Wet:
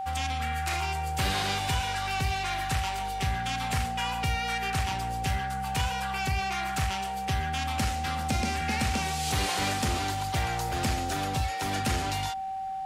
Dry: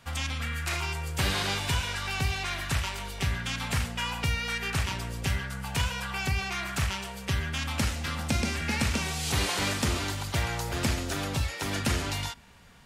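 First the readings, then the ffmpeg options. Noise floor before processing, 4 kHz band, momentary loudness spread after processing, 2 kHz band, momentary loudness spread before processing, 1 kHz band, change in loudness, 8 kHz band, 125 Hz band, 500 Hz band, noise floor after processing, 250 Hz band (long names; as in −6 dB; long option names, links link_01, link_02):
−40 dBFS, −1.0 dB, 3 LU, −1.0 dB, 5 LU, +8.0 dB, +0.5 dB, −1.0 dB, −1.0 dB, −1.0 dB, −33 dBFS, −1.0 dB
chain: -af "aeval=exprs='val(0)+0.0282*sin(2*PI*770*n/s)':channel_layout=same,asoftclip=type=tanh:threshold=-18dB"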